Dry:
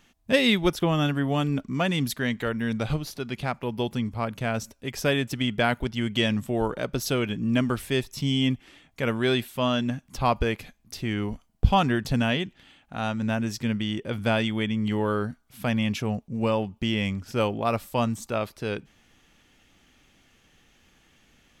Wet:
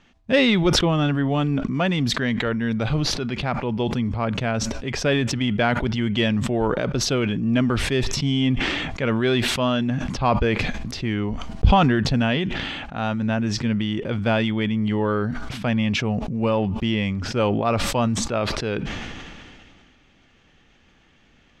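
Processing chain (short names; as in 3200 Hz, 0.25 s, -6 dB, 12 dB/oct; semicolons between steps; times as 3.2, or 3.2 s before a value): in parallel at -5 dB: soft clip -18 dBFS, distortion -13 dB; on the sum: air absorption 130 m; sustainer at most 26 dB/s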